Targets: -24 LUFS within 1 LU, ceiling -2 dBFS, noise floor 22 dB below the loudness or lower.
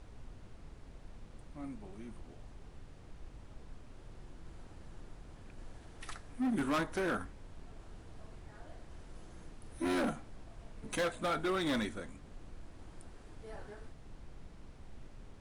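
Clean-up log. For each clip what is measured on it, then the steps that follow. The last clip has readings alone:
clipped samples 1.4%; clipping level -29.0 dBFS; noise floor -54 dBFS; noise floor target -59 dBFS; loudness -37.0 LUFS; peak level -29.0 dBFS; loudness target -24.0 LUFS
-> clip repair -29 dBFS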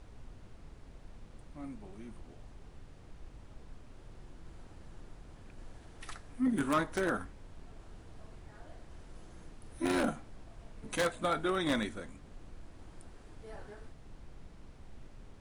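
clipped samples 0.0%; noise floor -54 dBFS; noise floor target -57 dBFS
-> noise print and reduce 6 dB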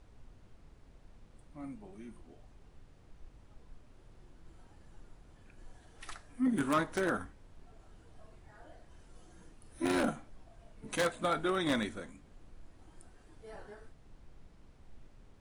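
noise floor -60 dBFS; loudness -34.5 LUFS; peak level -20.0 dBFS; loudness target -24.0 LUFS
-> trim +10.5 dB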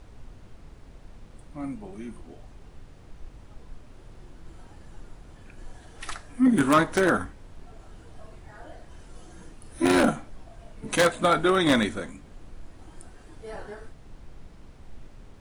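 loudness -24.0 LUFS; peak level -9.5 dBFS; noise floor -49 dBFS

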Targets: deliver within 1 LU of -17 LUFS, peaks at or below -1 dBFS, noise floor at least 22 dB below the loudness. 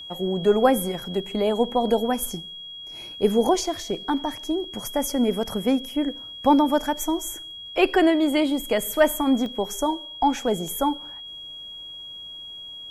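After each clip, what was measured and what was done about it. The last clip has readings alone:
dropouts 2; longest dropout 1.1 ms; steady tone 3.3 kHz; tone level -36 dBFS; loudness -23.5 LUFS; peak level -4.5 dBFS; loudness target -17.0 LUFS
-> interpolate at 9.46/10.68 s, 1.1 ms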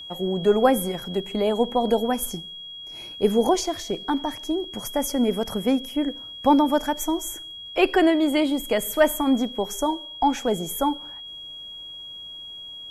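dropouts 0; steady tone 3.3 kHz; tone level -36 dBFS
-> band-stop 3.3 kHz, Q 30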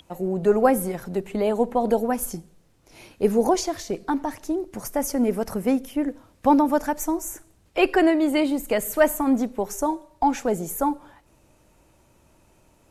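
steady tone not found; loudness -23.5 LUFS; peak level -4.5 dBFS; loudness target -17.0 LUFS
-> trim +6.5 dB; peak limiter -1 dBFS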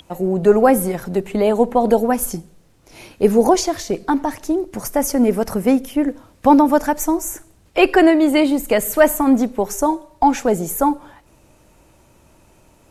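loudness -17.0 LUFS; peak level -1.0 dBFS; noise floor -53 dBFS

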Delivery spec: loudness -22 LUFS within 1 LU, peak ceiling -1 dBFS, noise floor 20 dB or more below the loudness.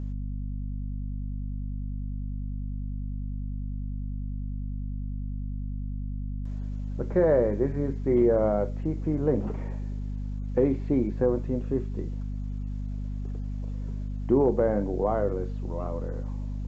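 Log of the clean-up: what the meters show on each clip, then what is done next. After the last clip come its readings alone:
hum 50 Hz; highest harmonic 250 Hz; hum level -30 dBFS; loudness -29.5 LUFS; peak level -11.5 dBFS; loudness target -22.0 LUFS
-> de-hum 50 Hz, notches 5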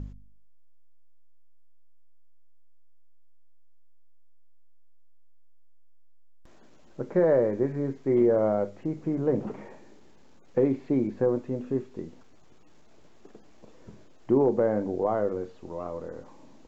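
hum not found; loudness -27.0 LUFS; peak level -12.5 dBFS; loudness target -22.0 LUFS
-> trim +5 dB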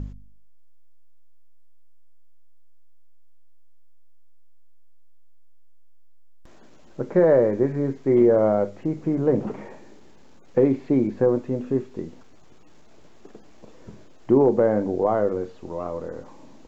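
loudness -22.0 LUFS; peak level -7.5 dBFS; noise floor -45 dBFS

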